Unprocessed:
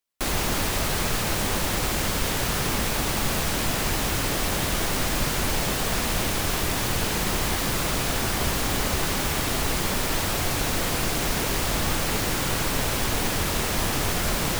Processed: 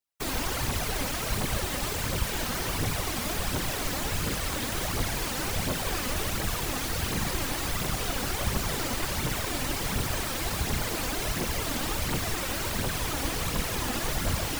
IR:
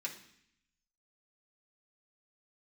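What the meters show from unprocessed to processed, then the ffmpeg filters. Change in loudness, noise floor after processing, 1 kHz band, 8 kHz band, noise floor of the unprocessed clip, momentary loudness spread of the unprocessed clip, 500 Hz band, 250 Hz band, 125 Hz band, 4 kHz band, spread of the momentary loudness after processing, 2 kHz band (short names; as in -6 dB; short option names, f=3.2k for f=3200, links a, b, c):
-5.0 dB, -32 dBFS, -5.0 dB, -5.0 dB, -26 dBFS, 0 LU, -5.0 dB, -5.0 dB, -3.5 dB, -5.0 dB, 1 LU, -5.0 dB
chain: -af "afftfilt=real='hypot(re,im)*cos(2*PI*random(0))':imag='hypot(re,im)*sin(2*PI*random(1))':win_size=512:overlap=0.75,aphaser=in_gain=1:out_gain=1:delay=4.1:decay=0.44:speed=1.4:type=triangular"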